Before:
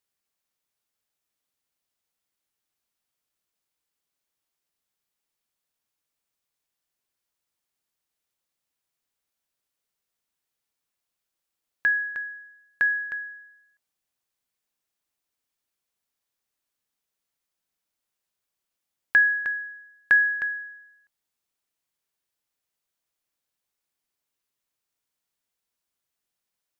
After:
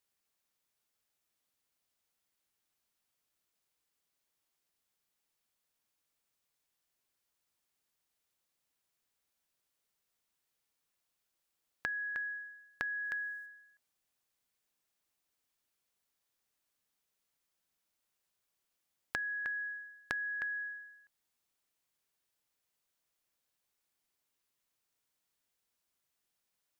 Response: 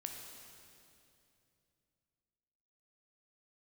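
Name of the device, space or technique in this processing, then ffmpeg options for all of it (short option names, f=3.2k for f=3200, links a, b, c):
serial compression, peaks first: -filter_complex "[0:a]acompressor=threshold=-31dB:ratio=6,acompressor=threshold=-38dB:ratio=2,asplit=3[a][b][c];[a]afade=t=out:st=13.03:d=0.02[d];[b]bass=f=250:g=-2,treble=f=4k:g=9,afade=t=in:st=13.03:d=0.02,afade=t=out:st=13.45:d=0.02[e];[c]afade=t=in:st=13.45:d=0.02[f];[d][e][f]amix=inputs=3:normalize=0"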